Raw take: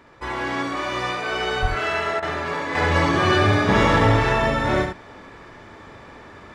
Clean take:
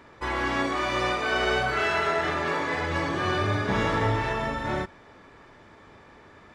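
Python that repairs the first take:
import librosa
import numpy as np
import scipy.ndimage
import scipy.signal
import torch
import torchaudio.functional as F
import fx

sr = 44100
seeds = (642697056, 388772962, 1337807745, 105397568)

y = fx.highpass(x, sr, hz=140.0, slope=24, at=(1.61, 1.73), fade=0.02)
y = fx.fix_interpolate(y, sr, at_s=(2.2,), length_ms=23.0)
y = fx.fix_echo_inverse(y, sr, delay_ms=71, level_db=-6.0)
y = fx.gain(y, sr, db=fx.steps((0.0, 0.0), (2.75, -7.5)))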